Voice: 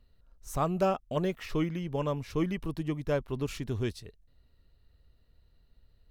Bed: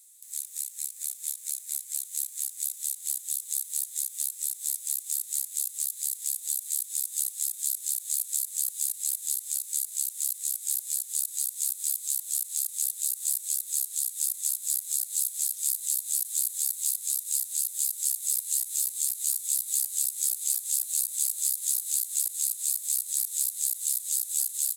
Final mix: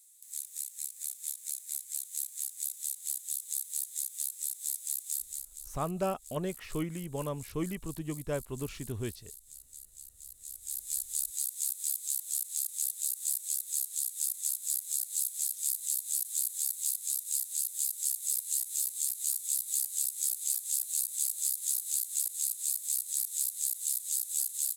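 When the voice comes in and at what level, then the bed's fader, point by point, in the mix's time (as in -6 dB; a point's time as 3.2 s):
5.20 s, -4.5 dB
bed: 5.16 s -4.5 dB
5.74 s -20 dB
10.25 s -20 dB
10.94 s -4 dB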